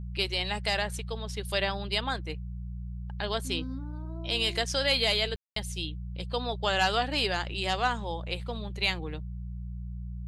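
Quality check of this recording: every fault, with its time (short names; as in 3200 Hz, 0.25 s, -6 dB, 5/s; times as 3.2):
hum 60 Hz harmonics 3 -37 dBFS
5.36–5.56 gap 0.203 s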